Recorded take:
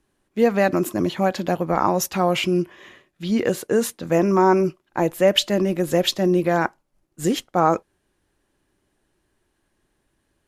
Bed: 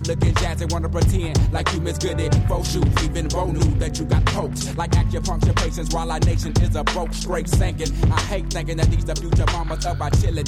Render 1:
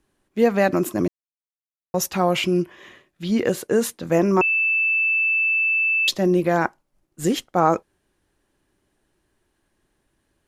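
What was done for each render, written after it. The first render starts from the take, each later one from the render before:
0:01.08–0:01.94: silence
0:04.41–0:06.08: beep over 2,640 Hz −17 dBFS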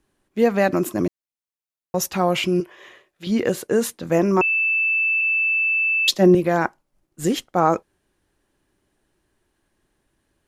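0:02.60–0:03.27: low shelf with overshoot 330 Hz −8.5 dB, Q 1.5
0:05.21–0:06.35: multiband upward and downward expander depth 70%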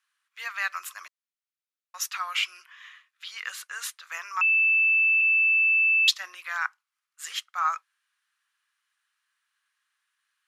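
Chebyshev high-pass filter 1,200 Hz, order 4
high-shelf EQ 7,200 Hz −8 dB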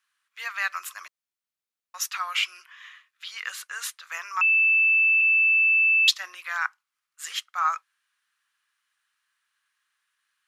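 level +1.5 dB

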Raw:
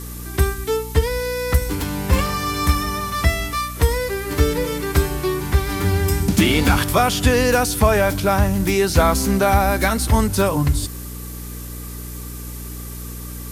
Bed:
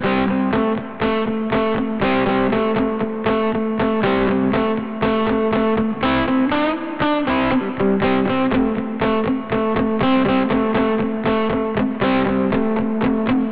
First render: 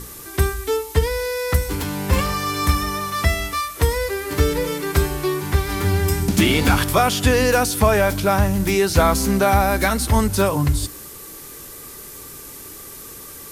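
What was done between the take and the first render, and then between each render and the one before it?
mains-hum notches 60/120/180/240/300 Hz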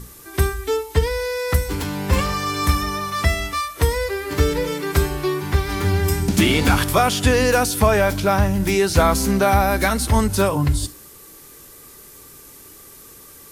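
noise reduction from a noise print 6 dB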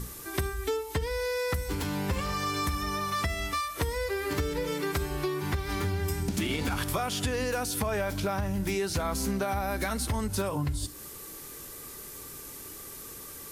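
brickwall limiter −8 dBFS, peak gain reduction 6 dB
downward compressor 5 to 1, threshold −28 dBFS, peak gain reduction 13.5 dB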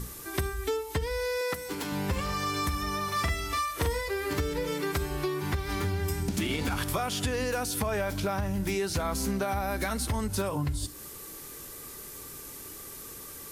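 0:01.41–0:01.92: high-pass filter 210 Hz
0:03.04–0:04.08: double-tracking delay 43 ms −5 dB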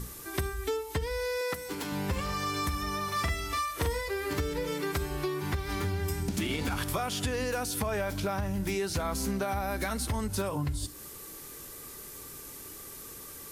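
level −1.5 dB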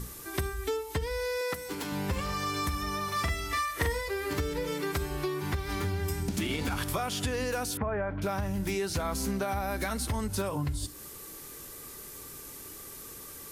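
0:03.51–0:03.92: parametric band 1,900 Hz +10.5 dB 0.26 octaves
0:07.77–0:08.22: low-pass filter 1,900 Hz 24 dB per octave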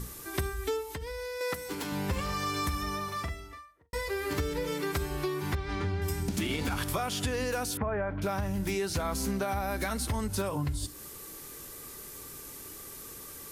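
0:00.87–0:01.41: downward compressor, threshold −34 dBFS
0:02.76–0:03.93: fade out and dull
0:05.55–0:06.02: high-frequency loss of the air 120 metres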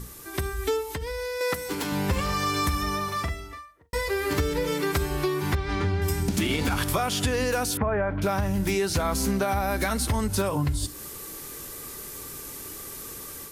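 automatic gain control gain up to 6 dB

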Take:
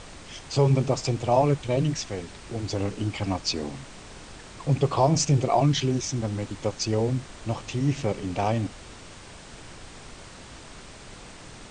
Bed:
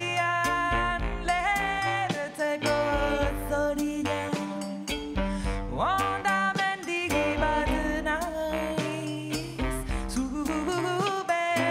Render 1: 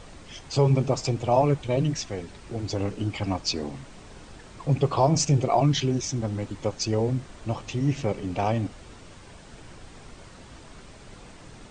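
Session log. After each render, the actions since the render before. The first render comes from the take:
broadband denoise 6 dB, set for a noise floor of −45 dBFS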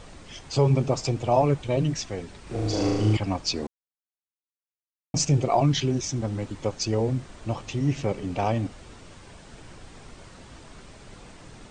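0:02.43–0:03.17: flutter between parallel walls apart 6.4 metres, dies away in 1.4 s
0:03.67–0:05.14: silence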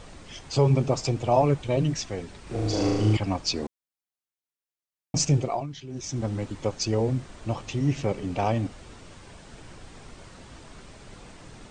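0:05.32–0:06.23: duck −16 dB, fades 0.35 s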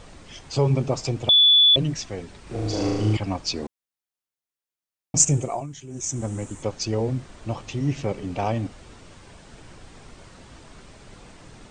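0:01.29–0:01.76: beep over 3,450 Hz −11.5 dBFS
0:05.17–0:06.63: high shelf with overshoot 5,800 Hz +8.5 dB, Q 3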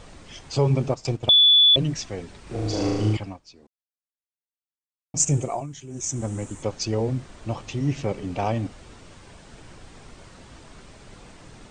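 0:00.89–0:01.54: transient designer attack +1 dB, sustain −11 dB
0:03.07–0:05.35: duck −22 dB, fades 0.33 s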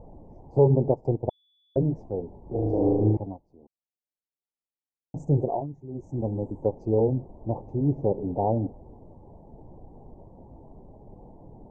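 elliptic low-pass filter 880 Hz, stop band 40 dB
dynamic equaliser 430 Hz, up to +5 dB, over −41 dBFS, Q 1.8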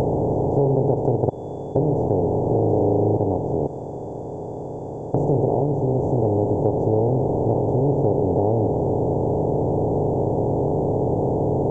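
compressor on every frequency bin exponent 0.2
downward compressor 2 to 1, threshold −18 dBFS, peak gain reduction 5 dB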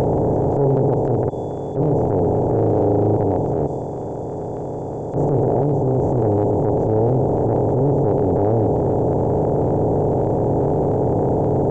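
transient designer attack −12 dB, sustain +3 dB
in parallel at −2 dB: brickwall limiter −18 dBFS, peak gain reduction 9.5 dB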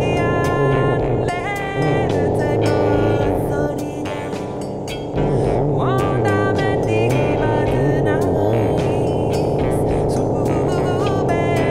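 mix in bed +1.5 dB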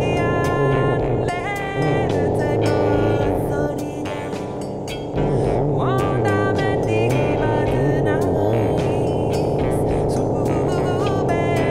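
level −1.5 dB

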